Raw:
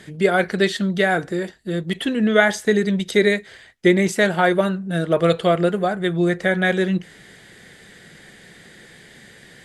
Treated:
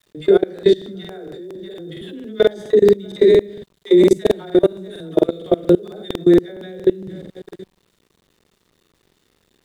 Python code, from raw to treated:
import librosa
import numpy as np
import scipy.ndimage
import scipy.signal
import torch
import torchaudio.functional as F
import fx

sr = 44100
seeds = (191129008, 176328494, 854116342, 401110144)

y = fx.spec_trails(x, sr, decay_s=0.36)
y = y + 10.0 ** (-19.5 / 20.0) * np.pad(y, (int(638 * sr / 1000.0), 0))[:len(y)]
y = fx.leveller(y, sr, passes=1)
y = fx.high_shelf(y, sr, hz=5200.0, db=8.5, at=(3.86, 6.22))
y = fx.echo_feedback(y, sr, ms=108, feedback_pct=26, wet_db=-12.5)
y = fx.chopper(y, sr, hz=4.7, depth_pct=60, duty_pct=90)
y = fx.small_body(y, sr, hz=(380.0, 3600.0), ring_ms=20, db=18)
y = fx.dispersion(y, sr, late='lows', ms=107.0, hz=420.0)
y = fx.level_steps(y, sr, step_db=24)
y = np.where(np.abs(y) >= 10.0 ** (-43.0 / 20.0), y, 0.0)
y = fx.low_shelf(y, sr, hz=220.0, db=10.5)
y = fx.buffer_crackle(y, sr, first_s=0.54, period_s=0.23, block=2048, kind='repeat')
y = y * librosa.db_to_amplitude(-12.0)